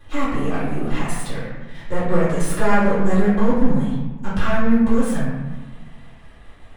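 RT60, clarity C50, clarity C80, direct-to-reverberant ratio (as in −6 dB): 1.2 s, −0.5 dB, 3.0 dB, −12.0 dB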